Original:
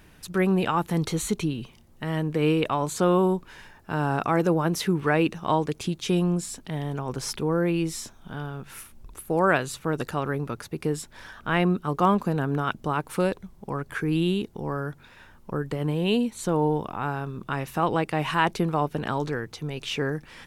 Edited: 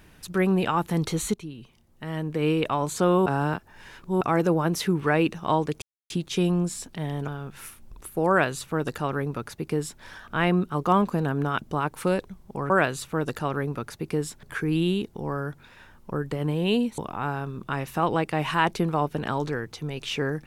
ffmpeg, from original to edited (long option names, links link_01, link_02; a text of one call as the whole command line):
ffmpeg -i in.wav -filter_complex "[0:a]asplit=9[link_01][link_02][link_03][link_04][link_05][link_06][link_07][link_08][link_09];[link_01]atrim=end=1.34,asetpts=PTS-STARTPTS,afade=type=out:start_time=1.336:duration=0.004:curve=hsin:silence=0.211349[link_10];[link_02]atrim=start=1.34:end=3.262,asetpts=PTS-STARTPTS,afade=type=in:duration=1.42:silence=0.211349[link_11];[link_03]atrim=start=3.258:end=4.212,asetpts=PTS-STARTPTS,areverse[link_12];[link_04]atrim=start=4.208:end=5.82,asetpts=PTS-STARTPTS,afade=type=out:start_time=1.608:duration=0.004:curve=hsin,apad=pad_dur=0.28[link_13];[link_05]atrim=start=5.82:end=7.002,asetpts=PTS-STARTPTS,afade=type=in:duration=0.004:curve=hsin[link_14];[link_06]atrim=start=8.408:end=13.832[link_15];[link_07]atrim=start=9.418:end=11.152[link_16];[link_08]atrim=start=13.828:end=16.382[link_17];[link_09]atrim=start=16.778[link_18];[link_10][link_11]concat=n=2:v=0:a=1[link_19];[link_19][link_12]acrossfade=duration=0.004:curve1=hsin:curve2=hsin[link_20];[link_13][link_14]concat=n=2:v=0:a=1[link_21];[link_20][link_21]acrossfade=duration=0.004:curve1=hsin:curve2=hsin[link_22];[link_22][link_15]acrossfade=duration=0.004:curve1=hsin:curve2=hsin[link_23];[link_23][link_16]acrossfade=duration=0.004:curve1=hsin:curve2=hsin[link_24];[link_24][link_17]acrossfade=duration=0.004:curve1=hsin:curve2=hsin[link_25];[link_25][link_18]acrossfade=duration=0.004:curve1=hsin:curve2=hsin" out.wav